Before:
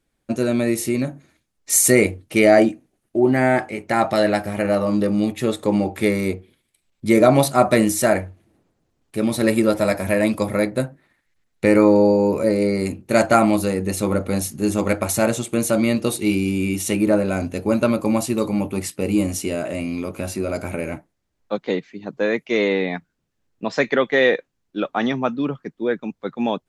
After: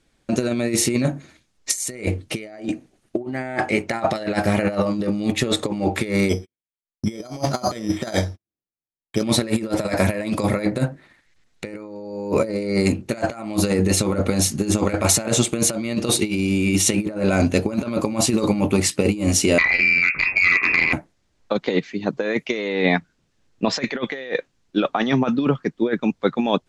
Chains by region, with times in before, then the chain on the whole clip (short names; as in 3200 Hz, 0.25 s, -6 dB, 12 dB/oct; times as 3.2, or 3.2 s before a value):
6.29–9.23 gate -47 dBFS, range -44 dB + careless resampling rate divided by 8×, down filtered, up hold
19.58–20.93 inverted band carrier 2600 Hz + core saturation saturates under 1200 Hz
whole clip: LPF 6300 Hz 12 dB/oct; high shelf 3900 Hz +7.5 dB; negative-ratio compressor -23 dBFS, ratio -0.5; gain +3 dB